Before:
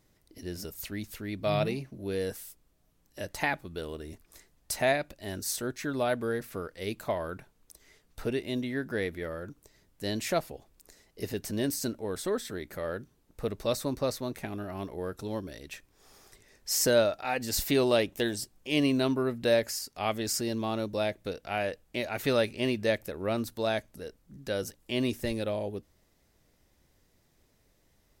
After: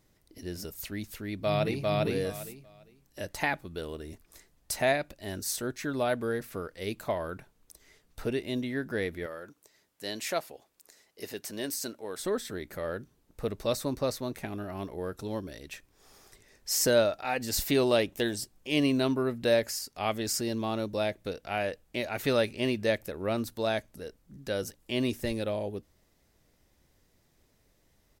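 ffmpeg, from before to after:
ffmpeg -i in.wav -filter_complex "[0:a]asplit=2[link_01][link_02];[link_02]afade=type=in:start_time=1.26:duration=0.01,afade=type=out:start_time=1.9:duration=0.01,aecho=0:1:400|800|1200:0.944061|0.188812|0.0377624[link_03];[link_01][link_03]amix=inputs=2:normalize=0,asettb=1/sr,asplit=3[link_04][link_05][link_06];[link_04]atrim=end=9.264[link_07];[link_05]atrim=start=9.26:end=12.2,asetpts=PTS-STARTPTS,afade=type=in:duration=0.004:curve=qsin,afade=type=out:start_time=2.936:duration=0.004:curve=qsin,highpass=frequency=560:poles=1[link_08];[link_06]atrim=start=12.196[link_09];[link_07][link_08]acrossfade=duration=0.004:curve1=hsin:curve2=qsin[link_10];[link_10][link_09]acrossfade=duration=0.004:curve1=qsin:curve2=hsin" out.wav

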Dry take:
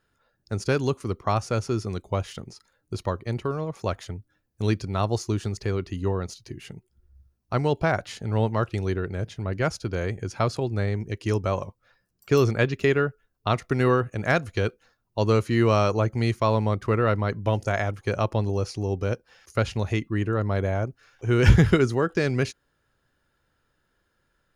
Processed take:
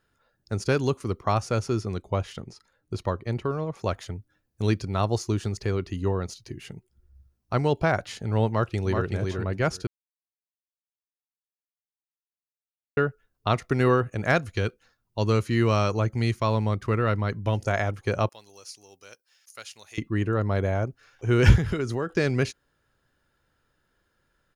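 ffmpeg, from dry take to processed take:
ffmpeg -i in.wav -filter_complex "[0:a]asettb=1/sr,asplit=3[link_01][link_02][link_03];[link_01]atrim=end=1.814[link_04];[link_02]atrim=start=1.81:end=3.83,asetpts=PTS-STARTPTS,afade=type=in:duration=0.004:curve=qsin,afade=type=out:start_time=2.016:duration=0.004:curve=qsin,highshelf=frequency=6000:gain=-6.5[link_05];[link_03]atrim=start=3.826[link_06];[link_04][link_05]acrossfade=duration=0.004:curve1=hsin:curve2=qsin[link_07];[link_07][link_06]acrossfade=duration=0.004:curve1=qsin:curve2=hsin,asplit=2[link_08][link_09];[link_09]afade=type=in:start_time=8.47:duration=0.01,afade=type=out:start_time=9.06:duration=0.01,aecho=0:1:380|760|1140:0.630957|0.0946436|0.0141965[link_10];[link_08][link_10]amix=inputs=2:normalize=0,asettb=1/sr,asplit=3[link_11][link_12][link_13];[link_11]atrim=end=14.414[link_14];[link_12]atrim=start=14.41:end=17.64,asetpts=PTS-STARTPTS,afade=type=in:duration=0.004:curve=qsin,afade=type=out:start_time=3.226:duration=0.004:curve=qsin,equalizer=frequency=600:width=0.65:gain=-4[link_15];[link_13]atrim=start=17.636[link_16];[link_14][link_15]acrossfade=duration=0.004:curve1=hsin:curve2=qsin[link_17];[link_17][link_16]acrossfade=duration=0.004:curve1=qsin:curve2=hsin,asettb=1/sr,asplit=3[link_18][link_19][link_20];[link_18]atrim=end=18.294[link_21];[link_19]atrim=start=18.29:end=19.98,asetpts=PTS-STARTPTS,afade=type=in:duration=0.004:curve=qsin,afade=type=out:start_time=1.686:duration=0.004:curve=qsin,aderivative[link_22];[link_20]atrim=start=19.976[link_23];[link_21][link_22]acrossfade=duration=0.004:curve1=hsin:curve2=qsin[link_24];[link_24][link_23]acrossfade=duration=0.004:curve1=qsin:curve2=hsin,asettb=1/sr,asplit=3[link_25][link_26][link_27];[link_25]atrim=end=21.564[link_28];[link_26]atrim=start=21.56:end=22.12,asetpts=PTS-STARTPTS,afade=type=in:duration=0.004:curve=qsin,afade=type=out:start_time=0.556:duration=0.004:curve=qsin,acompressor=threshold=-24dB:ratio=4:attack=3.2:release=140:knee=1:detection=peak[link_29];[link_27]atrim=start=22.116[link_30];[link_28][link_29]acrossfade=duration=0.004:curve1=hsin:curve2=qsin[link_31];[link_31][link_30]acrossfade=duration=0.004:curve1=qsin:curve2=hsin,asplit=3[link_32][link_33][link_34];[link_32]atrim=end=9.87,asetpts=PTS-STARTPTS,afade=type=out:start_time=9.866:duration=0.004:curve=hsin[link_35];[link_33]atrim=start=9.87:end=12.97,asetpts=PTS-STARTPTS,volume=0[link_36];[link_34]atrim=start=12.97,asetpts=PTS-STARTPTS,afade=type=in:duration=0.004:curve=hsin[link_37];[link_35][link_36][link_37]concat=n=3:v=0:a=1" out.wav

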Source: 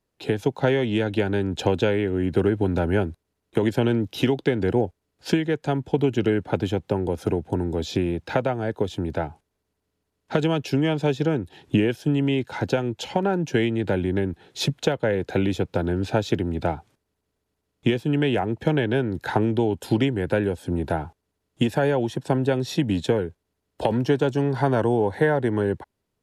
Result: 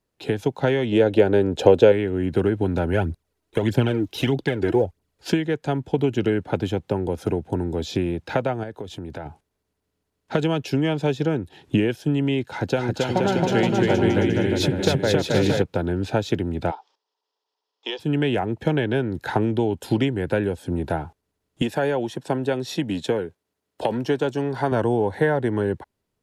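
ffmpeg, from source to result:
ffmpeg -i in.wav -filter_complex "[0:a]asettb=1/sr,asplit=3[link_01][link_02][link_03];[link_01]atrim=end=0.924[link_04];[link_02]atrim=start=0.92:end=1.92,asetpts=PTS-STARTPTS,afade=type=in:duration=0.004:curve=qsin,afade=type=out:start_time=0.996:duration=0.004:curve=qsin,equalizer=frequency=500:width=1.3:gain=10.5[link_05];[link_03]atrim=start=1.916[link_06];[link_04][link_05]acrossfade=duration=0.004:curve1=hsin:curve2=qsin[link_07];[link_07][link_06]acrossfade=duration=0.004:curve1=qsin:curve2=hsin,asplit=3[link_08][link_09][link_10];[link_08]afade=type=out:start_time=2.92:duration=0.02[link_11];[link_09]aphaser=in_gain=1:out_gain=1:delay=3.3:decay=0.58:speed=1.6:type=triangular,afade=type=in:start_time=2.92:duration=0.02,afade=type=out:start_time=5.29:duration=0.02[link_12];[link_10]afade=type=in:start_time=5.29:duration=0.02[link_13];[link_11][link_12][link_13]amix=inputs=3:normalize=0,asettb=1/sr,asplit=3[link_14][link_15][link_16];[link_14]atrim=end=8.634[link_17];[link_15]atrim=start=8.63:end=9.26,asetpts=PTS-STARTPTS,afade=type=in:duration=0.004:curve=qsin,afade=type=out:start_time=0.626:duration=0.004:curve=qsin,acompressor=threshold=-31dB:ratio=3:attack=3.2:release=140:knee=1:detection=peak[link_18];[link_16]atrim=start=9.256[link_19];[link_17][link_18]acrossfade=duration=0.004:curve1=hsin:curve2=qsin[link_20];[link_20][link_19]acrossfade=duration=0.004:curve1=qsin:curve2=hsin,asettb=1/sr,asplit=3[link_21][link_22][link_23];[link_21]atrim=end=12.444[link_24];[link_22]atrim=start=12.44:end=15.62,asetpts=PTS-STARTPTS,afade=type=in:duration=0.004:curve=qsin,afade=type=out:start_time=3.176:duration=0.004:curve=qsin,aecho=1:1:270|472.5|624.4|738.3|823.7|887.8|935.8:0.794|0.631|0.501|0.398|0.316|0.251|0.2,atrim=end_sample=140238[link_25];[link_23]atrim=start=15.616[link_26];[link_24][link_25]acrossfade=duration=0.004:curve1=hsin:curve2=qsin[link_27];[link_27][link_26]acrossfade=duration=0.004:curve1=qsin:curve2=hsin,asplit=3[link_28][link_29][link_30];[link_28]afade=type=out:start_time=16.7:duration=0.02[link_31];[link_29]highpass=frequency=480:width=0.5412,highpass=frequency=480:width=1.3066,equalizer=frequency=620:width_type=q:width=4:gain=-7,equalizer=frequency=920:width_type=q:width=4:gain=8,equalizer=frequency=1500:width_type=q:width=4:gain=-6,equalizer=frequency=2200:width_type=q:width=4:gain=-8,equalizer=frequency=3300:width_type=q:width=4:gain=5,equalizer=frequency=5200:width_type=q:width=4:gain=9,lowpass=frequency=5700:width=0.5412,lowpass=frequency=5700:width=1.3066,afade=type=in:start_time=16.7:duration=0.02,afade=type=out:start_time=17.99:duration=0.02[link_32];[link_30]afade=type=in:start_time=17.99:duration=0.02[link_33];[link_31][link_32][link_33]amix=inputs=3:normalize=0,asettb=1/sr,asplit=3[link_34][link_35][link_36];[link_34]atrim=end=21.624[link_37];[link_35]atrim=start=21.62:end=24.72,asetpts=PTS-STARTPTS,afade=type=in:duration=0.004:curve=qsin,afade=type=out:start_time=3.096:duration=0.004:curve=qsin,highpass=frequency=220:poles=1[link_38];[link_36]atrim=start=24.716[link_39];[link_37][link_38]acrossfade=duration=0.004:curve1=hsin:curve2=qsin[link_40];[link_40][link_39]acrossfade=duration=0.004:curve1=qsin:curve2=hsin" out.wav

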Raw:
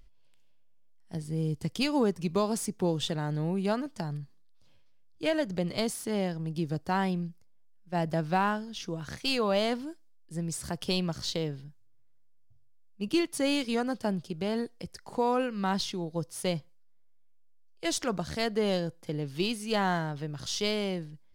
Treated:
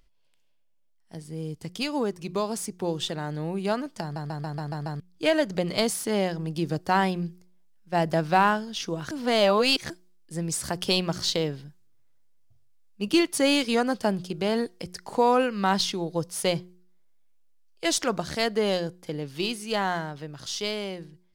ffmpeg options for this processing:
ffmpeg -i in.wav -filter_complex "[0:a]asplit=10[link_01][link_02][link_03][link_04][link_05][link_06][link_07][link_08][link_09][link_10];[link_01]atrim=end=4.162[link_11];[link_02]atrim=start=4.018:end=4.162[link_12];[link_03]atrim=start=4.018:end=4.162[link_13];[link_04]atrim=start=4.018:end=4.162[link_14];[link_05]atrim=start=4.018:end=4.162[link_15];[link_06]atrim=start=4.018:end=4.162[link_16];[link_07]atrim=start=4.018:end=4.162[link_17];[link_08]atrim=start=4.998:end=9.112[link_18];[link_09]atrim=start=9.108:end=9.902,asetpts=PTS-STARTPTS,areverse[link_19];[link_10]atrim=start=9.898[link_20];[link_11][link_12]acrossfade=duration=0.004:curve1=hsin:curve2=hsin[link_21];[link_21][link_13]acrossfade=duration=0.004:curve1=hsin:curve2=hsin[link_22];[link_22][link_14]acrossfade=duration=0.004:curve1=hsin:curve2=hsin[link_23];[link_23][link_15]acrossfade=duration=0.004:curve1=hsin:curve2=hsin[link_24];[link_24][link_16]acrossfade=duration=0.004:curve1=hsin:curve2=hsin[link_25];[link_25][link_17]acrossfade=duration=0.004:curve1=hsin:curve2=hsin[link_26];[link_26][link_18]acrossfade=duration=0.004:curve1=hsin:curve2=hsin[link_27];[link_27][link_19]acrossfade=duration=0.004:curve1=hsin:curve2=hsin[link_28];[link_28][link_20]acrossfade=duration=0.004:curve1=hsin:curve2=hsin,lowshelf=frequency=200:gain=-8,bandreject=frequency=180:width_type=h:width=4,bandreject=frequency=360:width_type=h:width=4,dynaudnorm=framelen=880:gausssize=9:maxgain=7.5dB" out.wav

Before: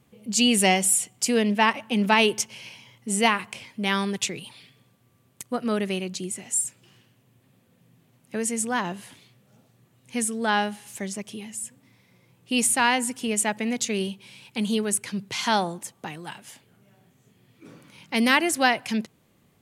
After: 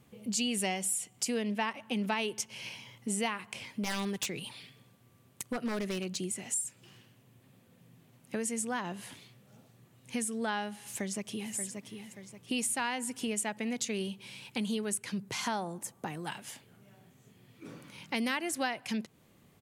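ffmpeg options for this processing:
ffmpeg -i in.wav -filter_complex "[0:a]asettb=1/sr,asplit=3[link_01][link_02][link_03];[link_01]atrim=end=3.694[link_04];[link_02]atrim=start=3.69:end=6.54,asetpts=PTS-STARTPTS,afade=type=in:duration=0.004:curve=qsin,afade=type=out:start_time=2.846:duration=0.004:curve=qsin,aeval=exprs='0.0944*(abs(mod(val(0)/0.0944+3,4)-2)-1)':channel_layout=same[link_05];[link_03]atrim=start=6.536[link_06];[link_04][link_05]acrossfade=duration=0.004:curve1=hsin:curve2=qsin[link_07];[link_07][link_06]acrossfade=duration=0.004:curve1=qsin:curve2=hsin,asplit=2[link_08][link_09];[link_09]afade=type=in:start_time=10.81:duration=0.01,afade=type=out:start_time=11.54:duration=0.01,aecho=0:1:580|1160|1740|2320:0.375837|0.131543|0.0460401|0.016114[link_10];[link_08][link_10]amix=inputs=2:normalize=0,asettb=1/sr,asplit=3[link_11][link_12][link_13];[link_11]atrim=end=15.184[link_14];[link_12]atrim=start=15.18:end=16.26,asetpts=PTS-STARTPTS,afade=type=in:duration=0.004:curve=qsin,afade=type=out:start_time=1.076:duration=0.004:curve=qsin,equalizer=frequency=3300:width_type=o:width=1.6:gain=-7[link_15];[link_13]atrim=start=16.256[link_16];[link_14][link_15]acrossfade=duration=0.004:curve1=hsin:curve2=qsin[link_17];[link_17][link_16]acrossfade=duration=0.004:curve1=qsin:curve2=hsin,acompressor=threshold=-33dB:ratio=3" out.wav

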